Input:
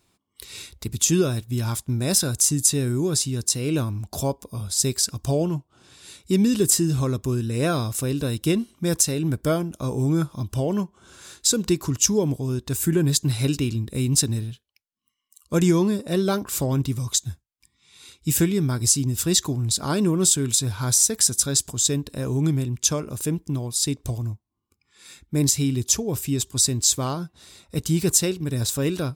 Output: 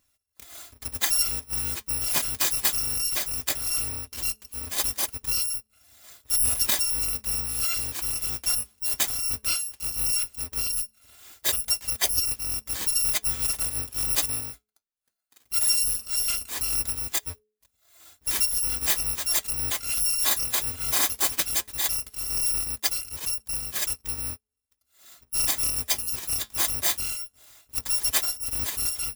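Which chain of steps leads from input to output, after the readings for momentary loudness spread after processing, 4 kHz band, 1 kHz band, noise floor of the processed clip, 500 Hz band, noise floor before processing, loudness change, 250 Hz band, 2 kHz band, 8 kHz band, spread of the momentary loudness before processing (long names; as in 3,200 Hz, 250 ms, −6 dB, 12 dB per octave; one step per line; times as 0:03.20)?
7 LU, −0.5 dB, −4.0 dB, −76 dBFS, −18.5 dB, −74 dBFS, −2.0 dB, −24.0 dB, +2.0 dB, −4.0 dB, 9 LU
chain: samples in bit-reversed order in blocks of 256 samples
hum removal 213.3 Hz, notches 2
flanger 0.17 Hz, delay 1.1 ms, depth 8 ms, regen −65%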